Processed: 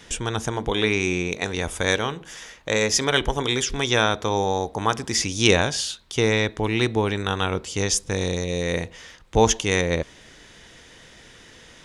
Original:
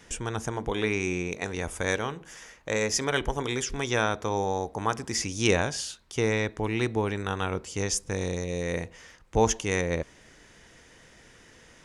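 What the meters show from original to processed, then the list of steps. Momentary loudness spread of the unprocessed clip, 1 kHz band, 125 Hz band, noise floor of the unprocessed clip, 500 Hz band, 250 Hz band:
8 LU, +5.0 dB, +5.0 dB, -55 dBFS, +5.0 dB, +5.0 dB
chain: bell 3600 Hz +7 dB 0.63 oct; gain +5 dB

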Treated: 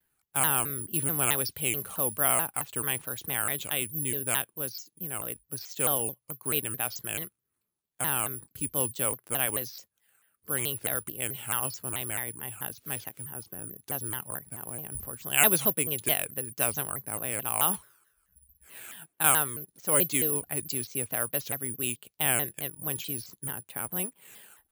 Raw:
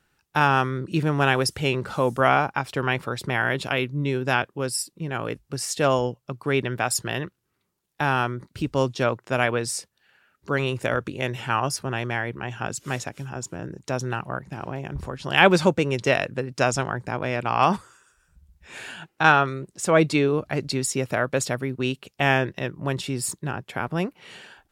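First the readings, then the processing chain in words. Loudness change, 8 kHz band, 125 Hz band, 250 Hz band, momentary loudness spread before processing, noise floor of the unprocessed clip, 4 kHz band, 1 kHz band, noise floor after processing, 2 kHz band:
-4.0 dB, +5.0 dB, -12.0 dB, -12.0 dB, 12 LU, -73 dBFS, -6.0 dB, -11.5 dB, -80 dBFS, -10.5 dB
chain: careless resampling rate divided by 4×, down filtered, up zero stuff; dynamic EQ 3200 Hz, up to +8 dB, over -42 dBFS, Q 1.9; shaped vibrato saw down 4.6 Hz, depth 250 cents; gain -12 dB

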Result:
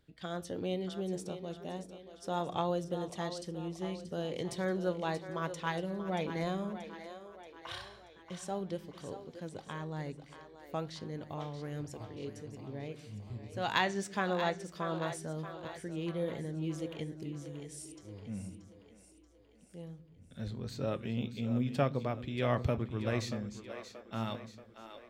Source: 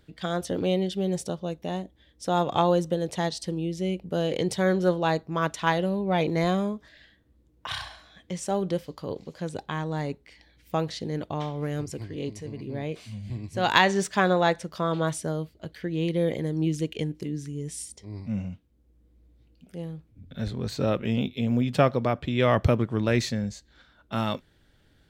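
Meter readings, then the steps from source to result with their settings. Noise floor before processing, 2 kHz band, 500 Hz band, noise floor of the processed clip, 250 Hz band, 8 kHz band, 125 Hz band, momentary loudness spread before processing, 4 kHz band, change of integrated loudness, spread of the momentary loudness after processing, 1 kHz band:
-62 dBFS, -10.0 dB, -10.0 dB, -59 dBFS, -10.0 dB, -10.0 dB, -9.5 dB, 14 LU, -10.0 dB, -10.0 dB, 15 LU, -10.0 dB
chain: flange 1.1 Hz, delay 7 ms, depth 2.6 ms, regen +82%; split-band echo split 300 Hz, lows 0.12 s, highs 0.631 s, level -10.5 dB; gain -6 dB

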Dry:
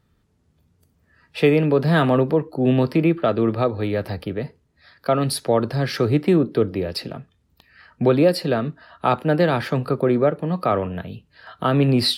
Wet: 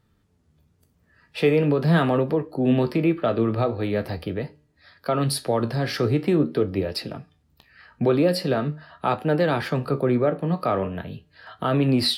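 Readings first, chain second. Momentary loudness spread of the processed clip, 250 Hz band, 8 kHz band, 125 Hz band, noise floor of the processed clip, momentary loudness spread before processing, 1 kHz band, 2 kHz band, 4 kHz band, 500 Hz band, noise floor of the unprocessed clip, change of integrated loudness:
11 LU, -2.5 dB, -1.5 dB, -2.5 dB, -65 dBFS, 13 LU, -3.0 dB, -2.5 dB, -2.0 dB, -3.0 dB, -65 dBFS, -2.5 dB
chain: in parallel at 0 dB: limiter -13.5 dBFS, peak gain reduction 8 dB; on the sum: resonator 150 Hz, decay 0.61 s, harmonics all, mix 30%; flange 0.43 Hz, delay 8.6 ms, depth 9.9 ms, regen +65%

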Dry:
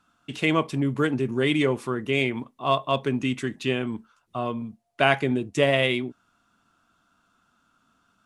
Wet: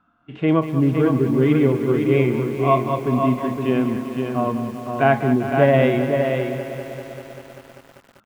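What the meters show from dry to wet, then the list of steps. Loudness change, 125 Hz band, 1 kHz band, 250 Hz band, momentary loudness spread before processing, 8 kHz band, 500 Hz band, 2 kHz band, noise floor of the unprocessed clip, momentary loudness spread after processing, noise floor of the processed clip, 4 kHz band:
+5.5 dB, +8.5 dB, +5.5 dB, +7.5 dB, 12 LU, n/a, +7.0 dB, -0.5 dB, -69 dBFS, 12 LU, -55 dBFS, -8.0 dB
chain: LPF 1700 Hz 12 dB/oct; harmonic-percussive split percussive -12 dB; echo 0.511 s -5.5 dB; lo-fi delay 0.196 s, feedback 80%, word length 8-bit, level -11 dB; gain +7 dB

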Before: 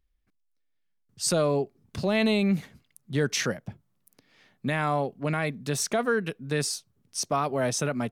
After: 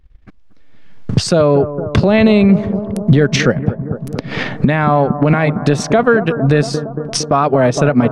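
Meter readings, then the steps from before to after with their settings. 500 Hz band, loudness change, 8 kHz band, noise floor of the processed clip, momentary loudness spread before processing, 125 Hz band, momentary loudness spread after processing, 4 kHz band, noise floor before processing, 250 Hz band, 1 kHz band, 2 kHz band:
+14.5 dB, +13.5 dB, +4.5 dB, -40 dBFS, 9 LU, +17.5 dB, 10 LU, +9.5 dB, -73 dBFS, +16.0 dB, +13.5 dB, +12.0 dB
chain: recorder AGC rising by 21 dB/s; transient shaper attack +11 dB, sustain -6 dB; in parallel at -2 dB: compressor, threshold -34 dBFS, peak gain reduction 23.5 dB; on the sum: tape spacing loss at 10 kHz 24 dB; on a send: analogue delay 0.23 s, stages 2048, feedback 73%, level -15.5 dB; on the sum: maximiser +17 dB; gain -1 dB

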